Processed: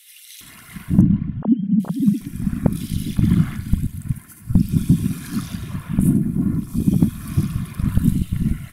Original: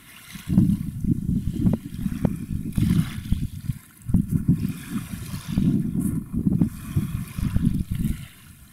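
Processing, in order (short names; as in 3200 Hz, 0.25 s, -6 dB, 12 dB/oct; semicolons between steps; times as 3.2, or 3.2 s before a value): 1.01–1.8 sine-wave speech; bands offset in time highs, lows 0.41 s, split 2600 Hz; gain +4.5 dB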